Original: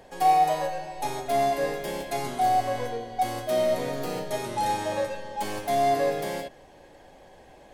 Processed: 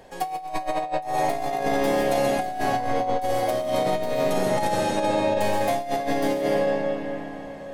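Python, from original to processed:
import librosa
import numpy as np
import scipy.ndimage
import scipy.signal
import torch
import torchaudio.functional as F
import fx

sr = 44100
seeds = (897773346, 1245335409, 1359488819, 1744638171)

y = fx.rev_freeverb(x, sr, rt60_s=4.3, hf_ratio=0.55, predelay_ms=90, drr_db=-2.5)
y = fx.over_compress(y, sr, threshold_db=-23.0, ratio=-0.5)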